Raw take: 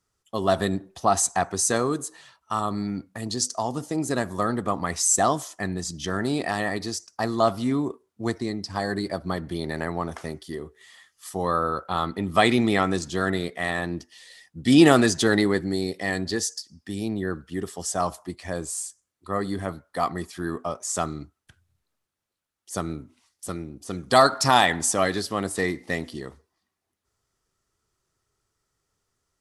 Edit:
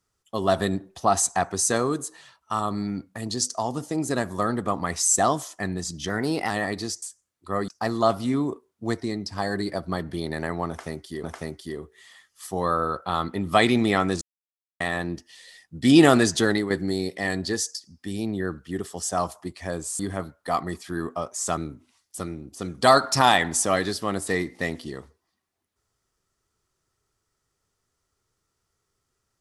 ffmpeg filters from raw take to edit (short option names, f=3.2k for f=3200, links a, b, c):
-filter_complex "[0:a]asplit=11[a][b][c][d][e][f][g][h][i][j][k];[a]atrim=end=6.094[l];[b]atrim=start=6.09:end=6.54,asetpts=PTS-STARTPTS,asetrate=48069,aresample=44100,atrim=end_sample=18206,asetpts=PTS-STARTPTS[m];[c]atrim=start=6.536:end=7.062[n];[d]atrim=start=18.818:end=19.482[o];[e]atrim=start=7.058:end=10.612[p];[f]atrim=start=10.058:end=13.04,asetpts=PTS-STARTPTS,afade=t=out:st=2.978:d=0.004:c=hsin[q];[g]atrim=start=13.04:end=13.63,asetpts=PTS-STARTPTS,volume=0[r];[h]atrim=start=13.63:end=15.53,asetpts=PTS-STARTPTS,afade=t=in:d=0.004:c=hsin,afade=t=out:st=1.51:d=0.39:c=qsin:silence=0.375837[s];[i]atrim=start=15.53:end=18.822,asetpts=PTS-STARTPTS,afade=t=in:d=0.004:c=hsin:silence=0.375837[t];[j]atrim=start=19.478:end=21.062[u];[k]atrim=start=22.858[v];[l][m]acrossfade=d=0.004:c1=hsin:c2=hsin[w];[w][n]acrossfade=d=0.004:c1=hsin:c2=hsin[x];[x][o]acrossfade=d=0.004:c1=hsin:c2=hsin[y];[y][p]acrossfade=d=0.004:c1=hsin:c2=hsin[z];[q][r][s][t]concat=n=4:v=0:a=1[aa];[z][aa]acrossfade=d=0.004:c1=hsin:c2=hsin[ab];[ab][u]acrossfade=d=0.004:c1=hsin:c2=hsin[ac];[ac][v]acrossfade=d=0.004:c1=hsin:c2=hsin"